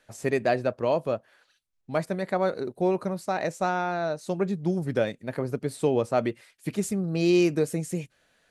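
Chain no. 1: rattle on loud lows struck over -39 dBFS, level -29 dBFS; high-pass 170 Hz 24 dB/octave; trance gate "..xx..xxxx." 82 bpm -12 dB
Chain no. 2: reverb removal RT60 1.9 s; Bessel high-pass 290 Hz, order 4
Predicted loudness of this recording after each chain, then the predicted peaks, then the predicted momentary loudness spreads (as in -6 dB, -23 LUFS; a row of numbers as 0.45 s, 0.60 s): -29.5 LUFS, -30.5 LUFS; -10.5 dBFS, -12.5 dBFS; 17 LU, 10 LU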